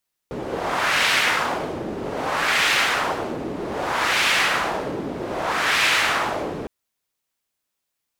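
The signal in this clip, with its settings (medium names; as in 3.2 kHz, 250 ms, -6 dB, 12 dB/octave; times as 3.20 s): wind-like swept noise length 6.36 s, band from 340 Hz, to 2.3 kHz, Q 1.3, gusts 4, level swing 11 dB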